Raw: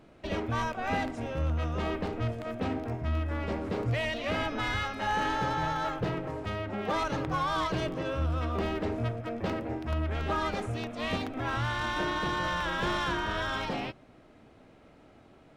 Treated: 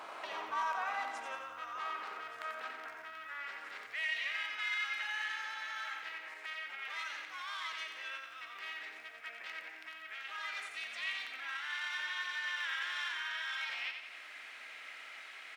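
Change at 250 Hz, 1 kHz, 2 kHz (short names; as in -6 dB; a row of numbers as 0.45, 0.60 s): under -30 dB, -9.5 dB, -1.5 dB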